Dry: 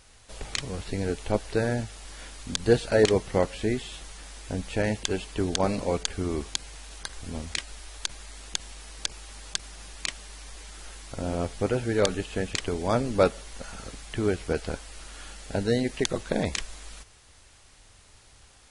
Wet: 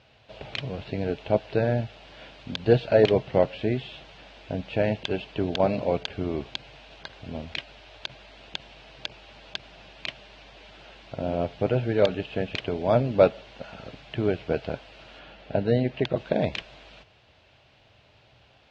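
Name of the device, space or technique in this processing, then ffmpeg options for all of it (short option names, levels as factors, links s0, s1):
guitar cabinet: -filter_complex "[0:a]highpass=92,equalizer=f=130:t=q:w=4:g=8,equalizer=f=630:t=q:w=4:g=8,equalizer=f=1200:t=q:w=4:g=-5,equalizer=f=1900:t=q:w=4:g=-4,equalizer=f=2700:t=q:w=4:g=4,lowpass=f=3800:w=0.5412,lowpass=f=3800:w=1.3066,asettb=1/sr,asplit=3[s0][s1][s2];[s0]atrim=end=15.194[s3];[s1]atrim=start=15.19:end=16.17,asetpts=PTS-STARTPTS,afade=t=in:d=0.004:c=qsin,afade=t=out:st=0.976:d=0.004:c=qsin,aemphasis=mode=reproduction:type=50fm[s4];[s2]atrim=start=16.166[s5];[s3][s4]acrossfade=d=0.004:c1=hsin:c2=qsin[s6];[s6][s5]acrossfade=d=0.004:c1=qsin:c2=hsin"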